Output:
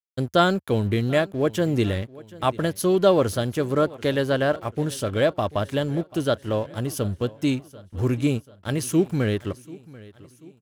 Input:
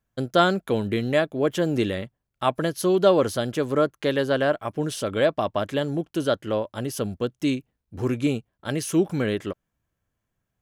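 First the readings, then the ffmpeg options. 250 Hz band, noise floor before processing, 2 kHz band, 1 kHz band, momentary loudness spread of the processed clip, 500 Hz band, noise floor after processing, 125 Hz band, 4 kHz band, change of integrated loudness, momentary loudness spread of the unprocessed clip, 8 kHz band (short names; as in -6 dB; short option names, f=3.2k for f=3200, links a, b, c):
+1.0 dB, -81 dBFS, 0.0 dB, 0.0 dB, 9 LU, 0.0 dB, -55 dBFS, +4.5 dB, 0.0 dB, +0.5 dB, 9 LU, +1.0 dB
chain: -af "highshelf=f=10k:g=6,aeval=exprs='sgn(val(0))*max(abs(val(0))-0.00562,0)':c=same,equalizer=f=79:w=1.1:g=12.5,aecho=1:1:738|1476|2214|2952:0.0944|0.0463|0.0227|0.0111"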